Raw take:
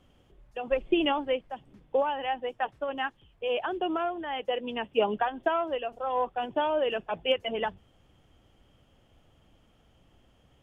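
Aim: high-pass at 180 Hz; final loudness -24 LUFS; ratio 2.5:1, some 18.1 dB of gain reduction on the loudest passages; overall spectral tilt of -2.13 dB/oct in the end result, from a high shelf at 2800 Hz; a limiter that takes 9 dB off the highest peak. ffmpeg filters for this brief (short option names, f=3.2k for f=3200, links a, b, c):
-af "highpass=180,highshelf=f=2.8k:g=-7,acompressor=threshold=-50dB:ratio=2.5,volume=25.5dB,alimiter=limit=-14.5dB:level=0:latency=1"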